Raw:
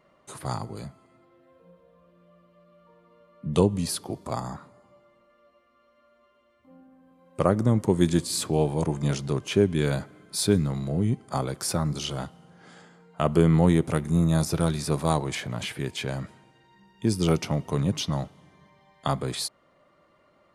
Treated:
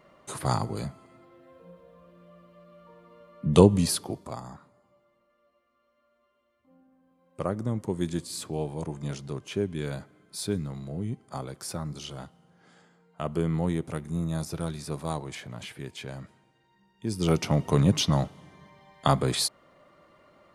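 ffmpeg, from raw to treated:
-af "volume=16.5dB,afade=t=out:st=3.76:d=0.6:silence=0.237137,afade=t=in:st=17.06:d=0.61:silence=0.251189"

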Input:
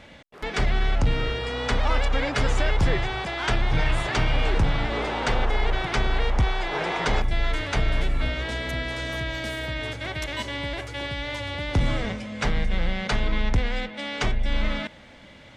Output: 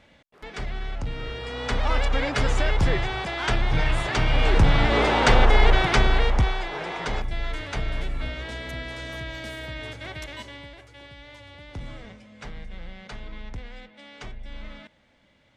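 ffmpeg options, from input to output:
-af "volume=7dB,afade=t=in:st=1.13:d=0.87:silence=0.354813,afade=t=in:st=4.2:d=0.83:silence=0.446684,afade=t=out:st=5.68:d=1.08:silence=0.251189,afade=t=out:st=10.13:d=0.62:silence=0.334965"

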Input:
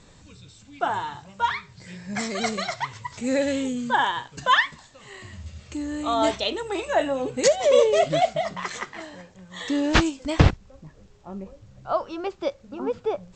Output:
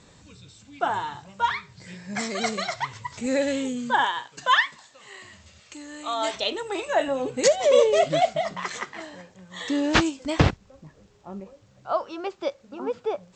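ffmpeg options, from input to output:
-af "asetnsamples=n=441:p=0,asendcmd='1.94 highpass f 150;2.76 highpass f 54;3.26 highpass f 170;4.06 highpass f 540;5.6 highpass f 1100;6.34 highpass f 270;7.08 highpass f 120;11.4 highpass f 300',highpass=f=71:p=1"

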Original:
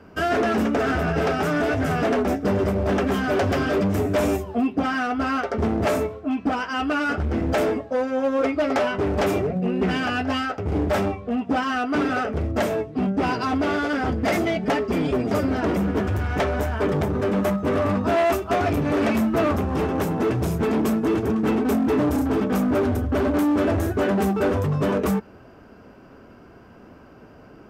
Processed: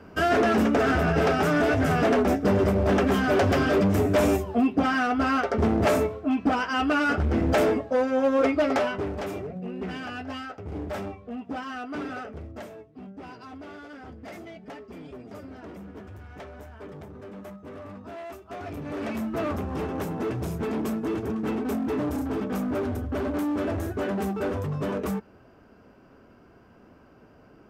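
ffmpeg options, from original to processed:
-af "volume=12.5dB,afade=t=out:st=8.55:d=0.65:silence=0.281838,afade=t=out:st=12.09:d=0.64:silence=0.375837,afade=t=in:st=18.41:d=1.15:silence=0.237137"

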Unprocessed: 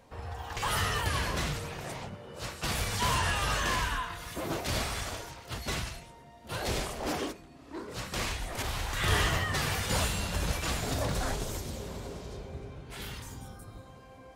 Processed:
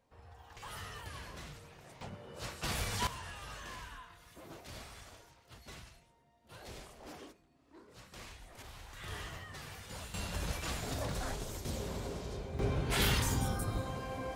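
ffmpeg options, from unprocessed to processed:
-af "asetnsamples=n=441:p=0,asendcmd='2.01 volume volume -4.5dB;3.07 volume volume -17dB;10.14 volume volume -6.5dB;11.65 volume volume 0dB;12.59 volume volume 11dB',volume=-16dB"

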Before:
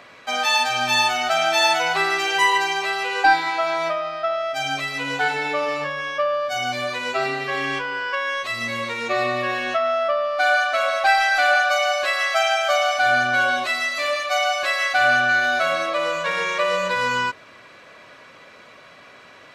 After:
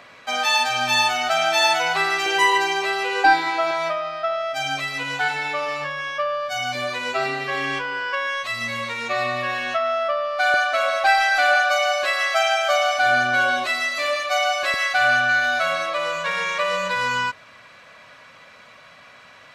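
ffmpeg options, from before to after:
-af "asetnsamples=n=441:p=0,asendcmd='2.26 equalizer g 4.5;3.71 equalizer g -5.5;5.03 equalizer g -13.5;6.75 equalizer g -2;8.27 equalizer g -10;10.54 equalizer g 0.5;14.74 equalizer g -11',equalizer=f=360:t=o:w=0.81:g=-3.5"

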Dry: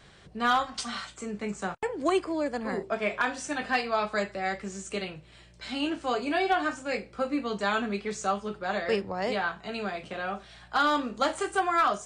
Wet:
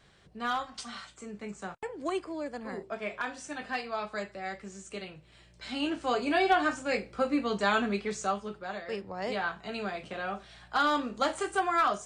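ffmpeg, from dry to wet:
-af "volume=9.5dB,afade=t=in:st=5.06:d=1.38:silence=0.398107,afade=t=out:st=7.87:d=0.99:silence=0.266073,afade=t=in:st=8.86:d=0.64:silence=0.375837"

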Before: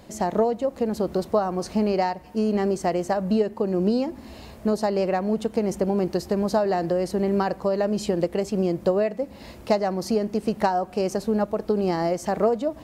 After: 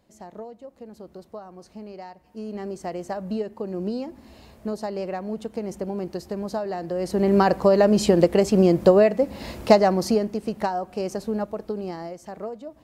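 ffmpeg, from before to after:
-af "volume=6.5dB,afade=t=in:st=2:d=1.11:silence=0.298538,afade=t=in:st=6.89:d=0.62:silence=0.223872,afade=t=out:st=9.82:d=0.56:silence=0.316228,afade=t=out:st=11.34:d=0.8:silence=0.354813"

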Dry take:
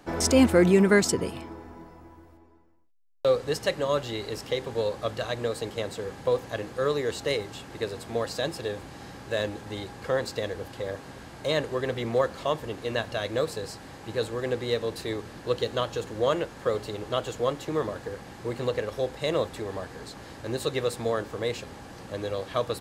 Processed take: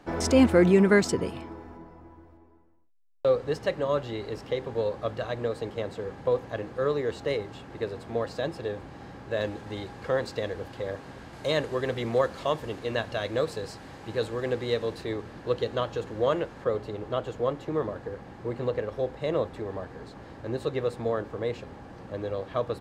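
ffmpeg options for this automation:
-af "asetnsamples=n=441:p=0,asendcmd='1.77 lowpass f 1700;9.41 lowpass f 3400;11.33 lowpass f 7600;12.79 lowpass f 4500;14.96 lowpass f 2300;16.64 lowpass f 1300',lowpass=f=3.5k:p=1"

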